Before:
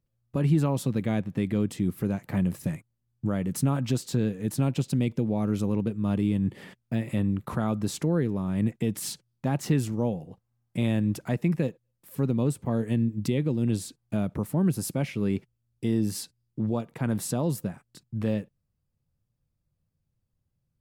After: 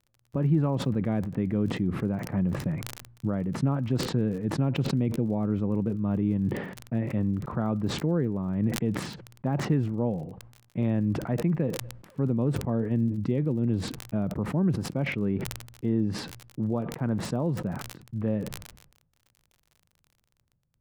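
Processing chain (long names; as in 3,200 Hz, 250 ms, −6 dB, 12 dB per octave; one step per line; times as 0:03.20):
low-pass filter 1,500 Hz 12 dB per octave
surface crackle 40 per second −45 dBFS
level that may fall only so fast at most 64 dB per second
level −1 dB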